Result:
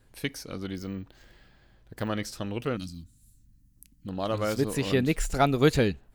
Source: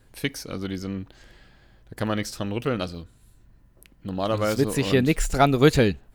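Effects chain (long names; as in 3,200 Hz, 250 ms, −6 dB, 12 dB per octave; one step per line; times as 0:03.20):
0:00.76–0:02.09: bad sample-rate conversion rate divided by 2×, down none, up hold
0:02.77–0:04.07: drawn EQ curve 280 Hz 0 dB, 440 Hz −28 dB, 3,200 Hz −7 dB, 6,500 Hz +6 dB
level −4.5 dB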